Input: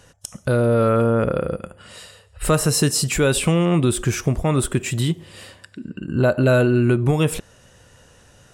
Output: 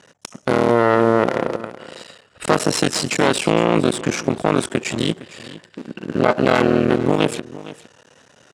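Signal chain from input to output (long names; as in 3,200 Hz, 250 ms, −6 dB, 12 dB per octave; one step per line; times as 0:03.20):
sub-harmonics by changed cycles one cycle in 3, muted
in parallel at +1 dB: brickwall limiter −14 dBFS, peak gain reduction 10 dB
on the sum: pitch vibrato 1.6 Hz 21 cents
harmonic generator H 4 −8 dB, 6 −24 dB, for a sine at −1 dBFS
band-pass filter 210–6,600 Hz
on a send: single-tap delay 460 ms −17 dB
on the sum: level −2.5 dB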